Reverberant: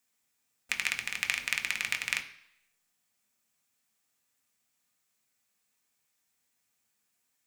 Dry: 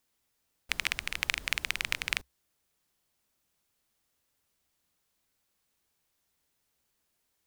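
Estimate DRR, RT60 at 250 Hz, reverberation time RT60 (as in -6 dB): 3.5 dB, 0.65 s, 0.70 s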